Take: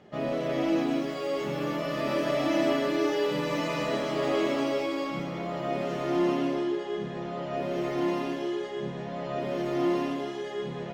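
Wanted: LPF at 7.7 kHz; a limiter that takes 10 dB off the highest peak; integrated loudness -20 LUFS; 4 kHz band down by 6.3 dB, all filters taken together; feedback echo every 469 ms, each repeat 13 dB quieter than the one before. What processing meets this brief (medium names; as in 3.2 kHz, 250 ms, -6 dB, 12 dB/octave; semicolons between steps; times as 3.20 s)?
low-pass 7.7 kHz; peaking EQ 4 kHz -9 dB; peak limiter -25 dBFS; feedback delay 469 ms, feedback 22%, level -13 dB; trim +13 dB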